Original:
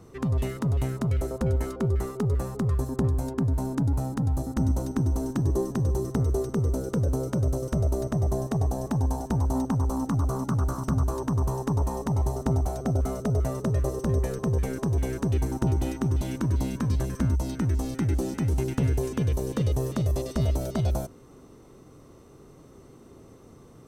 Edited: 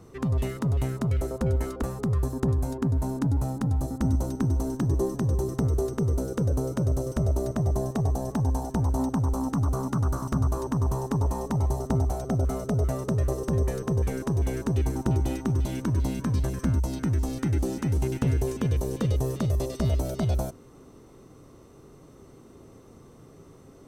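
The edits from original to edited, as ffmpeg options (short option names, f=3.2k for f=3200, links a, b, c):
-filter_complex "[0:a]asplit=2[a][b];[a]atrim=end=1.822[c];[b]atrim=start=2.378[d];[c][d]acrossfade=d=0.004:c1=hsin:c2=hsin"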